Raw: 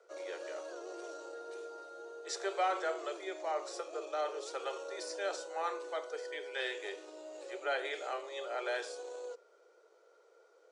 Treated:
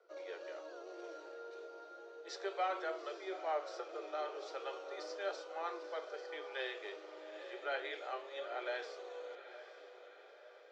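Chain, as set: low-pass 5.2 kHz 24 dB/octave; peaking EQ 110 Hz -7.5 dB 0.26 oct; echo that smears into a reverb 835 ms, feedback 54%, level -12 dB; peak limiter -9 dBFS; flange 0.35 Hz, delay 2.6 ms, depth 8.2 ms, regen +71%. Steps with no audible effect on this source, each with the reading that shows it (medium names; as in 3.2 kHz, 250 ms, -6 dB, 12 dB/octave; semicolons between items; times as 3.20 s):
peaking EQ 110 Hz: input has nothing below 290 Hz; peak limiter -9 dBFS: peak at its input -21.5 dBFS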